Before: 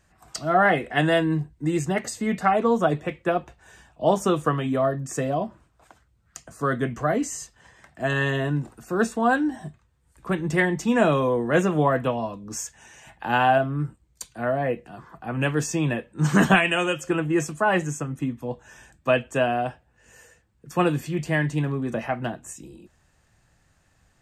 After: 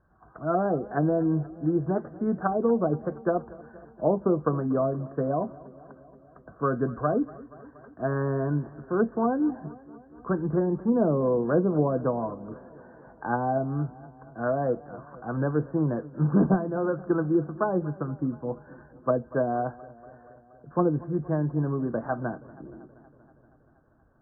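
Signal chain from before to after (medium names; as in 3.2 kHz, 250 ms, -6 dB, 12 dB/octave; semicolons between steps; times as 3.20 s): low-pass that closes with the level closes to 570 Hz, closed at -17 dBFS; rippled Chebyshev low-pass 1.6 kHz, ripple 3 dB; modulated delay 237 ms, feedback 69%, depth 56 cents, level -20.5 dB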